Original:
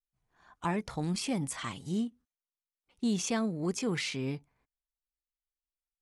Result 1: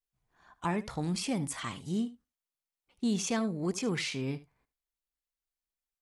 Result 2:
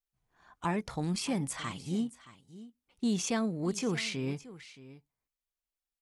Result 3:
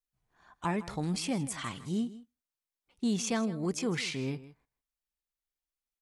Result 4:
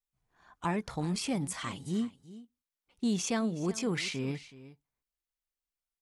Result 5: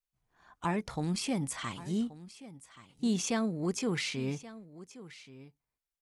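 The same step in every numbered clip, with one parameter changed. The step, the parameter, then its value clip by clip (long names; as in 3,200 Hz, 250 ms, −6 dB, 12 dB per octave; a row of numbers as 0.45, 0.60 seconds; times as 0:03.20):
single-tap delay, delay time: 75, 623, 159, 373, 1,128 milliseconds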